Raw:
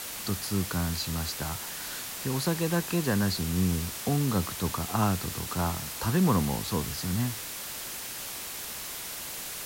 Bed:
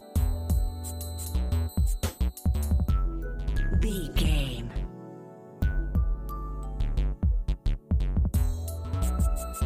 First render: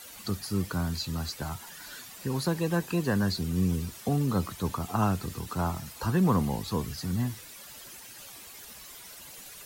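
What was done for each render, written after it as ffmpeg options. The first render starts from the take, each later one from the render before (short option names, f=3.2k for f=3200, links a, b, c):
-af "afftdn=nr=12:nf=-38"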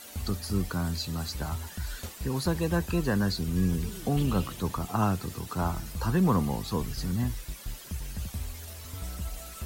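-filter_complex "[1:a]volume=-10.5dB[a];[0:a][a]amix=inputs=2:normalize=0"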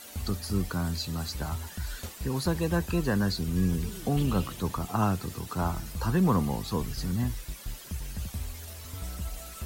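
-af anull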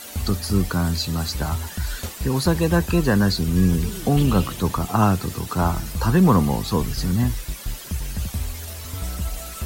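-af "volume=8.5dB"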